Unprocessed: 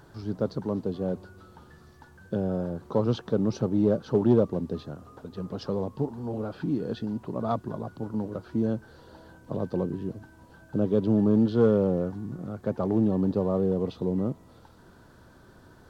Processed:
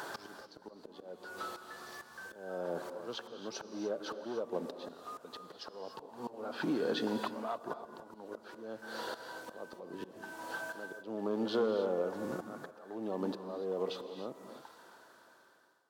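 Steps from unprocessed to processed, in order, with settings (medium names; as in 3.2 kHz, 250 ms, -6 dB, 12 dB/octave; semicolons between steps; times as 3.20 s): fade out at the end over 5.23 s; high-pass 570 Hz 12 dB/octave; compression 10:1, threshold -45 dBFS, peak gain reduction 21 dB; slow attack 456 ms; gated-style reverb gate 320 ms rising, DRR 8 dB; trim +15.5 dB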